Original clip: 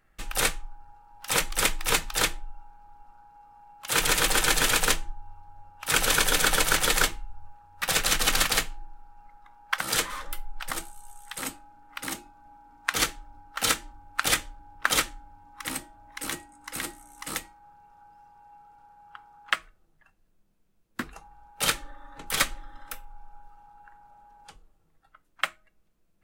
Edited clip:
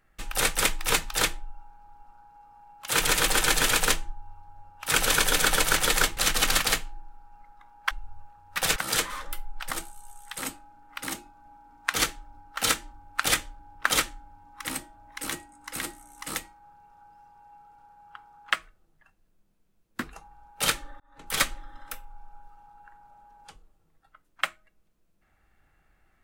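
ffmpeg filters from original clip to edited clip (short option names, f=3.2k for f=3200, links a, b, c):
-filter_complex "[0:a]asplit=6[a][b][c][d][e][f];[a]atrim=end=0.552[g];[b]atrim=start=1.548:end=7.172[h];[c]atrim=start=8.018:end=9.762[i];[d]atrim=start=7.168:end=8.022[j];[e]atrim=start=9.758:end=22,asetpts=PTS-STARTPTS,afade=t=out:st=12.238:d=0.004:c=hsin[k];[f]atrim=start=22,asetpts=PTS-STARTPTS,afade=t=in:d=0.39[l];[g][h]acrossfade=d=0.004:c1=hsin:c2=hsin[m];[m][i]acrossfade=d=0.004:c1=hsin:c2=hsin[n];[n][j]acrossfade=d=0.004:c1=hsin:c2=hsin[o];[k][l]concat=n=2:v=0:a=1[p];[o][p]acrossfade=d=0.004:c1=hsin:c2=hsin"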